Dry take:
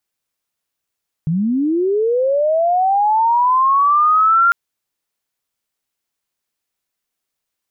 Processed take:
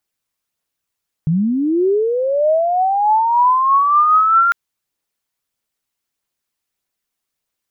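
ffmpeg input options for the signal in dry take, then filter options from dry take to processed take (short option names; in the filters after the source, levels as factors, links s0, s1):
-f lavfi -i "aevalsrc='pow(10,(-14.5+5.5*t/3.25)/20)*sin(2*PI*(150*t+1250*t*t/(2*3.25)))':d=3.25:s=44100"
-af "aphaser=in_gain=1:out_gain=1:delay=1.1:decay=0.23:speed=1.6:type=triangular"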